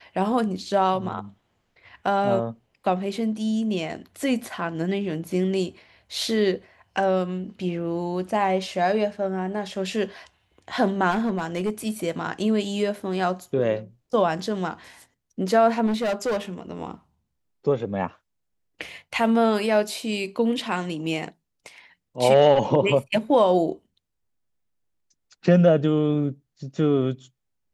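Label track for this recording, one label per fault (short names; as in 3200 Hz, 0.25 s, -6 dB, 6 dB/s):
11.100000	11.900000	clipped -19.5 dBFS
15.860000	16.370000	clipped -21 dBFS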